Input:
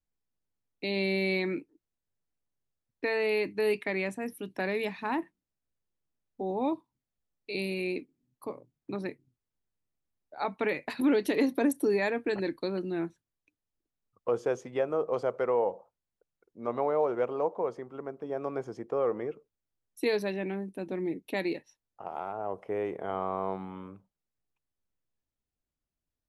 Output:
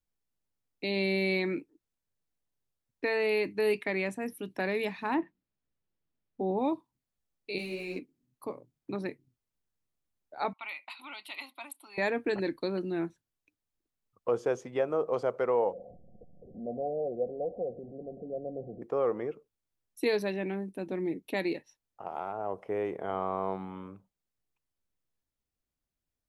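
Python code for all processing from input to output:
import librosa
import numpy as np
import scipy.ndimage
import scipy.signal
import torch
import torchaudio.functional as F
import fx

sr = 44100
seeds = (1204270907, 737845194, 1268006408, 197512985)

y = fx.chain(x, sr, fx.lowpass(hz=4000.0, slope=12),
    fx.peak_eq(hz=190.0, db=4.0, octaves=2.2), at=(5.14, 6.59))
y = fx.chain(y, sr, fx.backlash(play_db=-46.0),
    fx.ensemble(), at=(7.58, 7.99))
y = fx.chain(y, sr, fx.highpass(hz=1200.0, slope=12),
    fx.env_lowpass(base_hz=2800.0, full_db=-33.0),
    fx.fixed_phaser(hz=1700.0, stages=6), at=(10.53, 11.98))
y = fx.chain(y, sr, fx.zero_step(step_db=-37.0),
    fx.cheby_ripple(hz=750.0, ripple_db=9), at=(15.73, 18.82))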